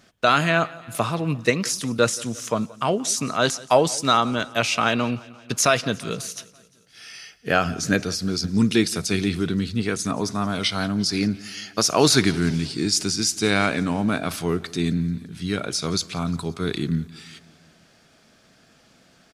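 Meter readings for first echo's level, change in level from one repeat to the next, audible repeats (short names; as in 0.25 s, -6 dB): -22.0 dB, -4.5 dB, 3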